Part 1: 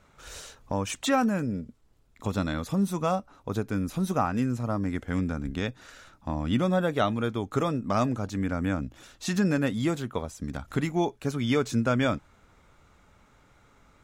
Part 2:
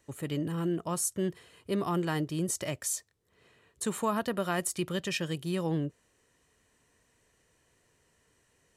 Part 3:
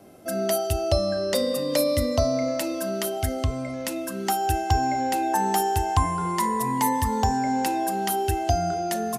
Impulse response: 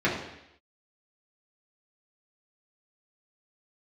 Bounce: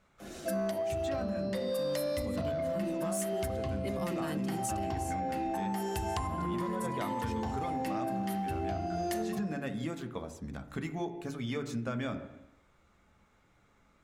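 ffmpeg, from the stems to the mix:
-filter_complex "[0:a]volume=-9dB,asplit=3[link_01][link_02][link_03];[link_02]volume=-19dB[link_04];[1:a]adynamicequalizer=threshold=0.00316:dfrequency=3900:dqfactor=0.7:tfrequency=3900:tqfactor=0.7:attack=5:release=100:ratio=0.375:range=3:mode=boostabove:tftype=highshelf,adelay=2150,volume=-2dB,afade=type=out:start_time=4.56:duration=0.42:silence=0.237137[link_05];[2:a]acompressor=threshold=-23dB:ratio=6,adelay=200,volume=1.5dB,asplit=2[link_06][link_07];[link_07]volume=-16.5dB[link_08];[link_03]apad=whole_len=413753[link_09];[link_06][link_09]sidechaincompress=threshold=-56dB:ratio=8:attack=16:release=158[link_10];[3:a]atrim=start_sample=2205[link_11];[link_04][link_08]amix=inputs=2:normalize=0[link_12];[link_12][link_11]afir=irnorm=-1:irlink=0[link_13];[link_01][link_05][link_10][link_13]amix=inputs=4:normalize=0,asoftclip=type=tanh:threshold=-16.5dB,acompressor=threshold=-31dB:ratio=6"

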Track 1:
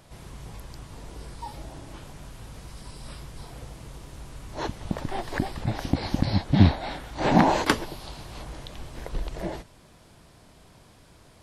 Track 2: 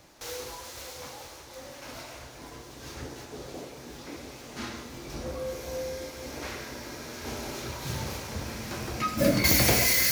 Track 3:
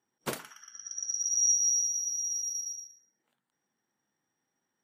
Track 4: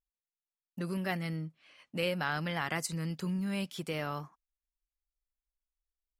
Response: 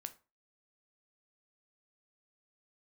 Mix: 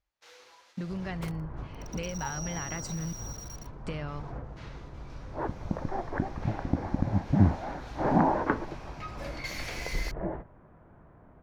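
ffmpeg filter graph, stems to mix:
-filter_complex "[0:a]lowpass=frequency=1600:width=0.5412,lowpass=frequency=1600:width=1.3066,adelay=800,volume=2dB,asplit=2[link_01][link_02];[link_02]volume=-4.5dB[link_03];[1:a]agate=range=-20dB:threshold=-42dB:ratio=16:detection=peak,bandpass=frequency=2200:width_type=q:width=0.59:csg=0,volume=-10dB[link_04];[2:a]aeval=exprs='val(0)*gte(abs(val(0)),0.0211)':channel_layout=same,acompressor=threshold=-29dB:ratio=6,adelay=950,volume=-7dB[link_05];[3:a]lowpass=frequency=7900:width=0.5412,lowpass=frequency=7900:width=1.3066,equalizer=frequency=85:width=0.79:gain=12,volume=3dB,asplit=3[link_06][link_07][link_08];[link_06]atrim=end=3.13,asetpts=PTS-STARTPTS,afade=type=out:start_time=3.126:duration=0.004:curve=hsin[link_09];[link_07]atrim=start=3.13:end=3.85,asetpts=PTS-STARTPTS,volume=0[link_10];[link_08]atrim=start=3.85,asetpts=PTS-STARTPTS,afade=type=in:duration=0.004:curve=hsin[link_11];[link_09][link_10][link_11]concat=n=3:v=0:a=1,asplit=2[link_12][link_13];[link_13]apad=whole_len=539341[link_14];[link_01][link_14]sidechaingate=range=-9dB:threshold=-54dB:ratio=16:detection=peak[link_15];[link_15][link_12]amix=inputs=2:normalize=0,acompressor=threshold=-33dB:ratio=6,volume=0dB[link_16];[4:a]atrim=start_sample=2205[link_17];[link_03][link_17]afir=irnorm=-1:irlink=0[link_18];[link_04][link_05][link_16][link_18]amix=inputs=4:normalize=0,highshelf=frequency=6100:gain=-7.5"

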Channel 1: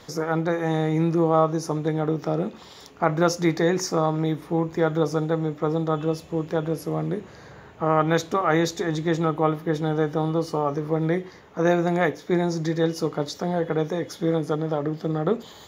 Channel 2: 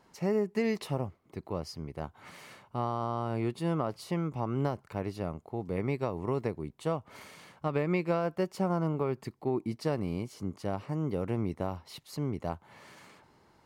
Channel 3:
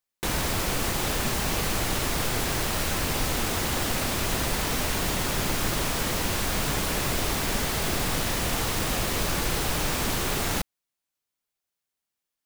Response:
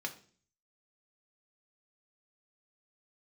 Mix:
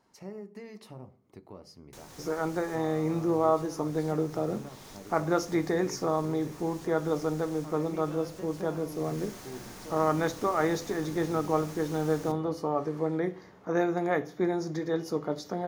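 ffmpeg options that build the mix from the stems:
-filter_complex "[0:a]adelay=2100,volume=-8dB,asplit=2[link_01][link_02];[link_02]volume=-4dB[link_03];[1:a]alimiter=limit=-21dB:level=0:latency=1:release=296,volume=-8.5dB,asplit=2[link_04][link_05];[link_05]volume=-6dB[link_06];[2:a]equalizer=frequency=6600:width_type=o:width=0.66:gain=5,adelay=1700,volume=-15dB,afade=type=in:start_time=8.87:duration=0.35:silence=0.421697,asplit=2[link_07][link_08];[link_08]volume=-6.5dB[link_09];[link_04][link_07]amix=inputs=2:normalize=0,equalizer=frequency=4700:width=0.55:gain=8,acompressor=threshold=-47dB:ratio=6,volume=0dB[link_10];[3:a]atrim=start_sample=2205[link_11];[link_03][link_06][link_09]amix=inputs=3:normalize=0[link_12];[link_12][link_11]afir=irnorm=-1:irlink=0[link_13];[link_01][link_10][link_13]amix=inputs=3:normalize=0,equalizer=frequency=3000:width=0.62:gain=-6.5"

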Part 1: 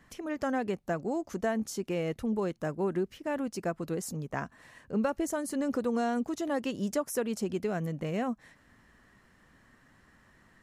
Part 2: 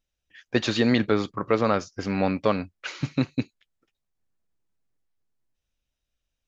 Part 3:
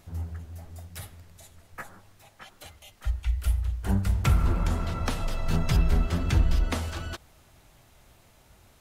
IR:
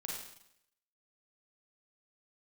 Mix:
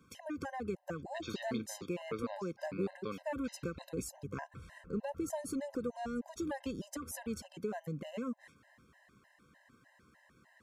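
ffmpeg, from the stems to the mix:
-filter_complex "[0:a]acompressor=threshold=-32dB:ratio=6,volume=-0.5dB[link_01];[1:a]adelay=600,volume=-16.5dB[link_02];[2:a]lowpass=1300,alimiter=limit=-22dB:level=0:latency=1:release=257,acompressor=threshold=-37dB:ratio=3,adelay=300,volume=-10.5dB[link_03];[link_01][link_02][link_03]amix=inputs=3:normalize=0,highpass=79,afftfilt=real='re*gt(sin(2*PI*3.3*pts/sr)*(1-2*mod(floor(b*sr/1024/530),2)),0)':imag='im*gt(sin(2*PI*3.3*pts/sr)*(1-2*mod(floor(b*sr/1024/530),2)),0)':win_size=1024:overlap=0.75"

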